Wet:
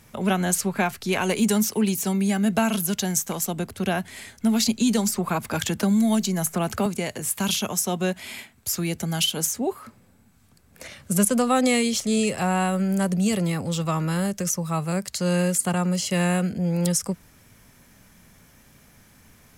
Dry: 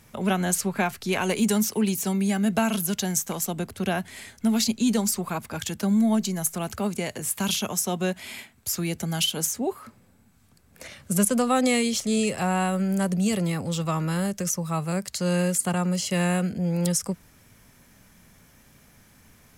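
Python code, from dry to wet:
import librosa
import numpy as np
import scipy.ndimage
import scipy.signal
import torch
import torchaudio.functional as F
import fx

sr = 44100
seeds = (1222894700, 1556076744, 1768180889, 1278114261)

y = fx.band_squash(x, sr, depth_pct=70, at=(4.66, 6.86))
y = y * 10.0 ** (1.5 / 20.0)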